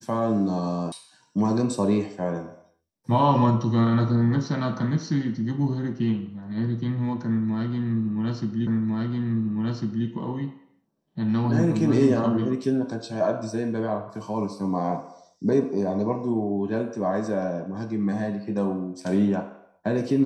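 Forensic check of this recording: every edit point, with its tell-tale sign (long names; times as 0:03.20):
0:00.92: cut off before it has died away
0:08.67: the same again, the last 1.4 s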